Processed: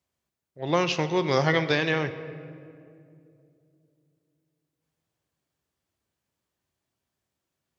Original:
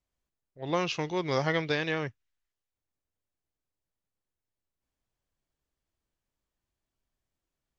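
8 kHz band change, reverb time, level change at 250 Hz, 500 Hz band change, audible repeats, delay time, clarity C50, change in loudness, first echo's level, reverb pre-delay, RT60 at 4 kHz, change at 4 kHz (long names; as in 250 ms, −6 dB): can't be measured, 2.6 s, +5.5 dB, +5.5 dB, no echo audible, no echo audible, 12.0 dB, +5.0 dB, no echo audible, 5 ms, 1.3 s, +5.5 dB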